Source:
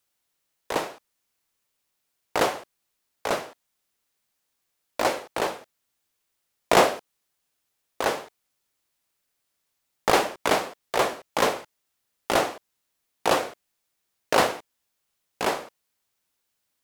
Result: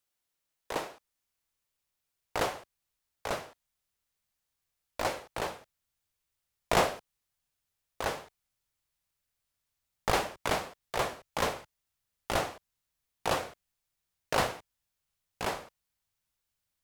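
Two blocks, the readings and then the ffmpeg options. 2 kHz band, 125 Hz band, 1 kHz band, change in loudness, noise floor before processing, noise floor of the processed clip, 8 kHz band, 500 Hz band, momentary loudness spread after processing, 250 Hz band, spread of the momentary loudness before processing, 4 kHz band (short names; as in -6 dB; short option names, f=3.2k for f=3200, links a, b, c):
-7.0 dB, -0.5 dB, -7.5 dB, -8.0 dB, -78 dBFS, -84 dBFS, -7.0 dB, -8.5 dB, 15 LU, -8.5 dB, 15 LU, -7.0 dB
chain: -af "asubboost=boost=4.5:cutoff=130,volume=-7dB"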